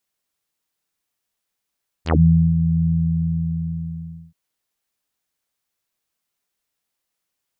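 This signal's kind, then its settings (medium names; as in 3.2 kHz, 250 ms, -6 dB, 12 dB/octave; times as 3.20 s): synth note saw E2 24 dB/octave, low-pass 170 Hz, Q 5.2, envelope 6 oct, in 0.12 s, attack 70 ms, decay 0.42 s, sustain -7.5 dB, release 1.47 s, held 0.81 s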